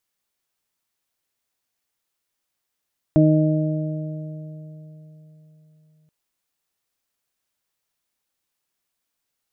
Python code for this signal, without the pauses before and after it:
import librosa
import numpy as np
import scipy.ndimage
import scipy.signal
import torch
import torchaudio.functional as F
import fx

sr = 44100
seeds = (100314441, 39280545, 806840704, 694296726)

y = fx.additive(sr, length_s=2.93, hz=155.0, level_db=-14.0, upper_db=(1.0, -18, -5.0), decay_s=4.07, upper_decays_s=(2.47, 3.64, 3.0))